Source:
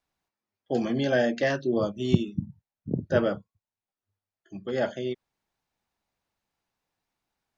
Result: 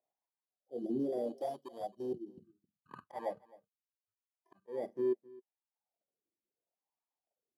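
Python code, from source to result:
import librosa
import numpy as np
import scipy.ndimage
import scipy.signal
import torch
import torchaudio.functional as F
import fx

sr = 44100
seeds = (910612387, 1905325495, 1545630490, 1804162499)

p1 = fx.bit_reversed(x, sr, seeds[0], block=32)
p2 = fx.dereverb_blind(p1, sr, rt60_s=0.75)
p3 = fx.spec_box(p2, sr, start_s=0.46, length_s=1.98, low_hz=780.0, high_hz=2900.0, gain_db=-26)
p4 = fx.level_steps(p3, sr, step_db=17)
p5 = p3 + (p4 * 10.0 ** (1.0 / 20.0))
p6 = fx.auto_swell(p5, sr, attack_ms=189.0)
p7 = 10.0 ** (-21.0 / 20.0) * np.tanh(p6 / 10.0 ** (-21.0 / 20.0))
p8 = fx.wah_lfo(p7, sr, hz=0.75, low_hz=340.0, high_hz=1000.0, q=3.7)
p9 = p8 + fx.echo_single(p8, sr, ms=264, db=-22.0, dry=0)
y = p9 * 10.0 ** (1.0 / 20.0)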